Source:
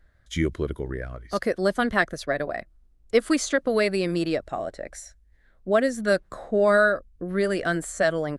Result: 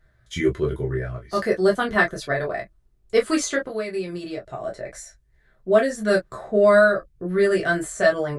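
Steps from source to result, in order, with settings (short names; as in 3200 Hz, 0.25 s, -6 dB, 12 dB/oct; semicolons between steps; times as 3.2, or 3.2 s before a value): 3.6–4.64 compressor 3:1, threshold -33 dBFS, peak gain reduction 11.5 dB; reverb, pre-delay 4 ms, DRR -2 dB; gain -1.5 dB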